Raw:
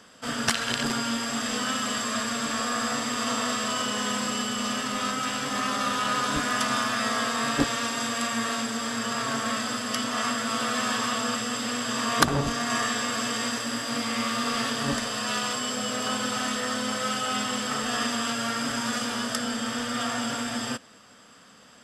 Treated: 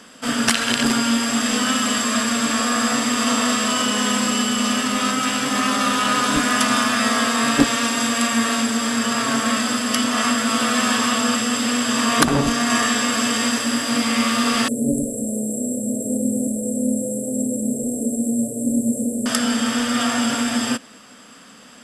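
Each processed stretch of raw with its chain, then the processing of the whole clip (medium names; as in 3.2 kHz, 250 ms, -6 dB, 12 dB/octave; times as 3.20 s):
14.68–19.26 s: Chebyshev band-stop 590–7800 Hz, order 5 + echo whose repeats swap between lows and highs 102 ms, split 1.5 kHz, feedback 52%, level -4 dB
whole clip: fifteen-band graphic EQ 100 Hz -7 dB, 250 Hz +6 dB, 2.5 kHz +3 dB, 10 kHz +6 dB; loudness maximiser +7 dB; trim -1 dB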